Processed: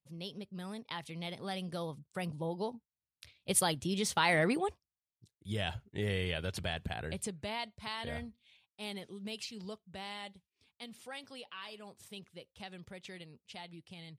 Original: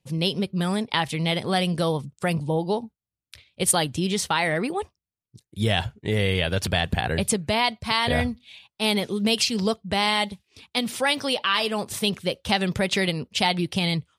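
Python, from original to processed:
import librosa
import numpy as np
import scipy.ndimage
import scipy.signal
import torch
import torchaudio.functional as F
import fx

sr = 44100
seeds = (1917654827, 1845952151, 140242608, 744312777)

y = fx.doppler_pass(x, sr, speed_mps=11, closest_m=3.2, pass_at_s=4.43)
y = fx.rider(y, sr, range_db=4, speed_s=0.5)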